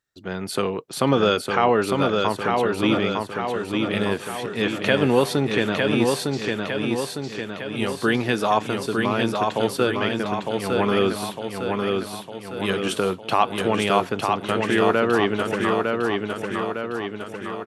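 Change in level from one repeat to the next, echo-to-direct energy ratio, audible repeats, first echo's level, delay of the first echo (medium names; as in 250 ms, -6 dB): -5.0 dB, -2.0 dB, 7, -3.5 dB, 906 ms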